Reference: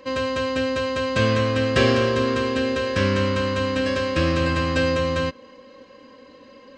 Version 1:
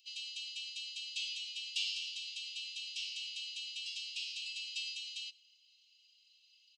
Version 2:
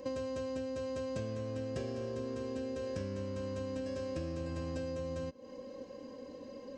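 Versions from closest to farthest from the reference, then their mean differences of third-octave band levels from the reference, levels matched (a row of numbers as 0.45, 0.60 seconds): 2, 1; 5.5, 22.0 decibels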